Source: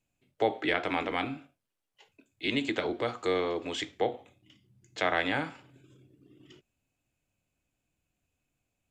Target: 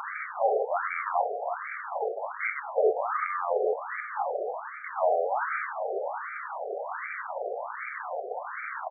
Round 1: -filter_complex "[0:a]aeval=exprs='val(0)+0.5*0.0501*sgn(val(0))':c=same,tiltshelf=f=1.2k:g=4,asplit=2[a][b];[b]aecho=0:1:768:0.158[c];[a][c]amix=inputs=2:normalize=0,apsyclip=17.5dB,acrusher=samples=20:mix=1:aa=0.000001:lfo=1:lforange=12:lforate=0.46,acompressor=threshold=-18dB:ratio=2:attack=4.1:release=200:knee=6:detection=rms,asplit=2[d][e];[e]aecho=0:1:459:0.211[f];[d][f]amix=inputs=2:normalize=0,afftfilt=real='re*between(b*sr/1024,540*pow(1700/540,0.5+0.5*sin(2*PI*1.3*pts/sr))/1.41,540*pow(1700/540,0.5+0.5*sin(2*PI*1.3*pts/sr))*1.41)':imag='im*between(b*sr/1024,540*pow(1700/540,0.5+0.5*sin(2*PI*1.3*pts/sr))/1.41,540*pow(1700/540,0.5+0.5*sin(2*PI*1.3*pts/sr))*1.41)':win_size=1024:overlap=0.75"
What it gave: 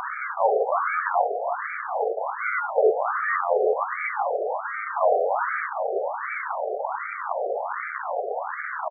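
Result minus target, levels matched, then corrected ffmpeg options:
compressor: peak gain reduction -5 dB; decimation with a swept rate: distortion +7 dB
-filter_complex "[0:a]aeval=exprs='val(0)+0.5*0.0501*sgn(val(0))':c=same,tiltshelf=f=1.2k:g=4,asplit=2[a][b];[b]aecho=0:1:768:0.158[c];[a][c]amix=inputs=2:normalize=0,apsyclip=17.5dB,acrusher=samples=7:mix=1:aa=0.000001:lfo=1:lforange=4.2:lforate=0.46,acompressor=threshold=-28.5dB:ratio=2:attack=4.1:release=200:knee=6:detection=rms,asplit=2[d][e];[e]aecho=0:1:459:0.211[f];[d][f]amix=inputs=2:normalize=0,afftfilt=real='re*between(b*sr/1024,540*pow(1700/540,0.5+0.5*sin(2*PI*1.3*pts/sr))/1.41,540*pow(1700/540,0.5+0.5*sin(2*PI*1.3*pts/sr))*1.41)':imag='im*between(b*sr/1024,540*pow(1700/540,0.5+0.5*sin(2*PI*1.3*pts/sr))/1.41,540*pow(1700/540,0.5+0.5*sin(2*PI*1.3*pts/sr))*1.41)':win_size=1024:overlap=0.75"

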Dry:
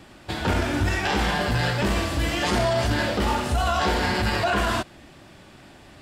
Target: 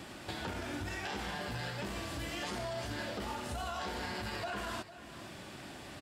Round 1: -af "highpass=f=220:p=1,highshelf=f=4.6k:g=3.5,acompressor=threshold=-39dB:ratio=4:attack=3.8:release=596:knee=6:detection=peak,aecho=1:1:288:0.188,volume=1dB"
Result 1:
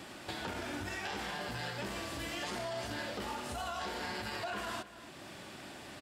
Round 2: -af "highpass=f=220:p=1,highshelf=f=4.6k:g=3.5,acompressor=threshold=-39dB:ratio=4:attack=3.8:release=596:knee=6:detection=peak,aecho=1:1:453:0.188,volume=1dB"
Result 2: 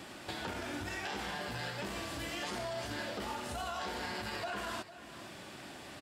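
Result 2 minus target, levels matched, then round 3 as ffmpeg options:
125 Hz band -3.5 dB
-af "highpass=f=90:p=1,highshelf=f=4.6k:g=3.5,acompressor=threshold=-39dB:ratio=4:attack=3.8:release=596:knee=6:detection=peak,aecho=1:1:453:0.188,volume=1dB"

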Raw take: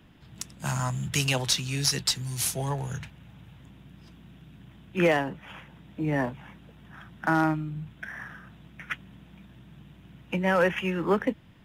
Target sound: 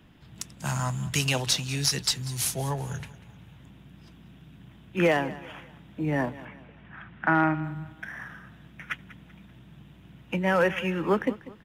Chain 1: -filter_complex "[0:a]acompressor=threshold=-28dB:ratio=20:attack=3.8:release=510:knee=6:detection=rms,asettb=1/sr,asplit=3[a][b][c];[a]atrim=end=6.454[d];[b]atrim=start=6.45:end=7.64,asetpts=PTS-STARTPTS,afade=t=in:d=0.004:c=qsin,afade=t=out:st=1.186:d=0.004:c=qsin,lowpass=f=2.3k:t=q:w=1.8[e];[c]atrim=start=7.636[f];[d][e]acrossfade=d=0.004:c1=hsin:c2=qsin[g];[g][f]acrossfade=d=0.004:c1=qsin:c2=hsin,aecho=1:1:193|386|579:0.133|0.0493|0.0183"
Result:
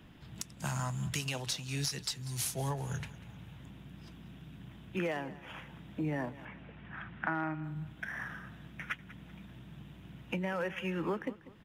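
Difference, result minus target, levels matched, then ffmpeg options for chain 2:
compressor: peak gain reduction +13 dB
-filter_complex "[0:a]asettb=1/sr,asplit=3[a][b][c];[a]atrim=end=6.454[d];[b]atrim=start=6.45:end=7.64,asetpts=PTS-STARTPTS,afade=t=in:d=0.004:c=qsin,afade=t=out:st=1.186:d=0.004:c=qsin,lowpass=f=2.3k:t=q:w=1.8[e];[c]atrim=start=7.636[f];[d][e]acrossfade=d=0.004:c1=hsin:c2=qsin[g];[g][f]acrossfade=d=0.004:c1=qsin:c2=hsin,aecho=1:1:193|386|579:0.133|0.0493|0.0183"

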